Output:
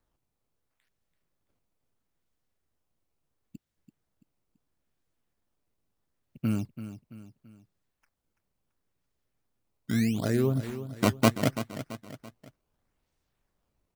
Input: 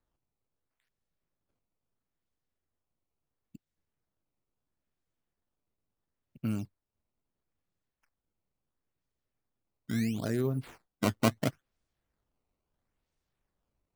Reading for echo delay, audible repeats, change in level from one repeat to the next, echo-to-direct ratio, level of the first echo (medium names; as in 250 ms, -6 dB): 335 ms, 3, -7.0 dB, -11.0 dB, -12.0 dB